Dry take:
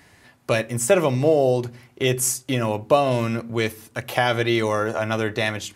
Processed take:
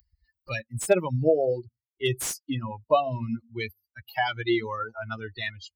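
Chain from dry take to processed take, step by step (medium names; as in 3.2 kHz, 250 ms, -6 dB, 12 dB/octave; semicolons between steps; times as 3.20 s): expander on every frequency bin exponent 3; upward compressor, threshold -41 dBFS; slew-rate limiter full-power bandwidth 280 Hz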